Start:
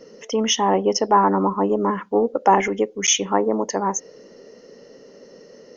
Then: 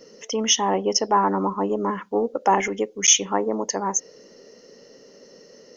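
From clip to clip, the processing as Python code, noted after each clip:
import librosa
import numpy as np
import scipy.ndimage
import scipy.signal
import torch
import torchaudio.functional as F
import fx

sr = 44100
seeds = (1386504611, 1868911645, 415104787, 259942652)

y = fx.high_shelf(x, sr, hz=3400.0, db=9.5)
y = y * 10.0 ** (-4.0 / 20.0)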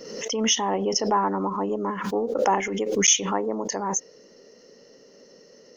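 y = fx.pre_swell(x, sr, db_per_s=49.0)
y = y * 10.0 ** (-3.5 / 20.0)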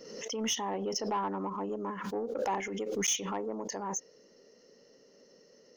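y = 10.0 ** (-15.0 / 20.0) * np.tanh(x / 10.0 ** (-15.0 / 20.0))
y = y * 10.0 ** (-8.5 / 20.0)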